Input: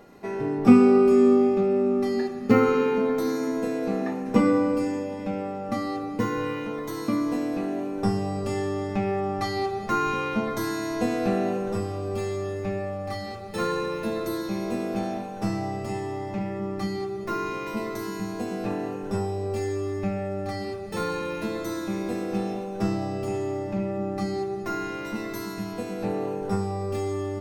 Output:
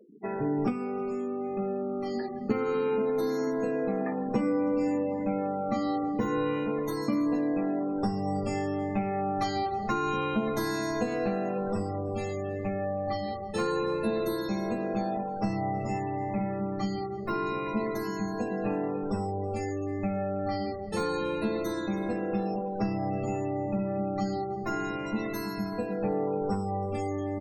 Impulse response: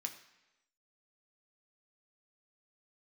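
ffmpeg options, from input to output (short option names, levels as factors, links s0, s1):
-filter_complex "[0:a]afftfilt=real='re*gte(hypot(re,im),0.0141)':imag='im*gte(hypot(re,im),0.0141)':win_size=1024:overlap=0.75,acompressor=threshold=0.0562:ratio=16,asplit=2[s0][s1];[s1]adelay=14,volume=0.447[s2];[s0][s2]amix=inputs=2:normalize=0,aecho=1:1:322:0.0668"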